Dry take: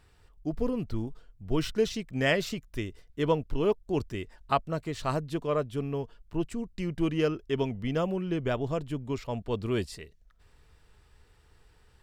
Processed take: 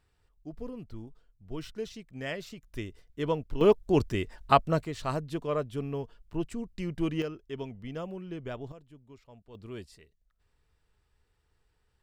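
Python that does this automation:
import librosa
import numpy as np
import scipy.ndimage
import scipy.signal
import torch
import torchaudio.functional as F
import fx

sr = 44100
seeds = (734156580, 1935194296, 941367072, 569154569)

y = fx.gain(x, sr, db=fx.steps((0.0, -10.5), (2.63, -3.5), (3.61, 5.0), (4.85, -2.0), (7.22, -9.0), (8.72, -20.0), (9.55, -12.5)))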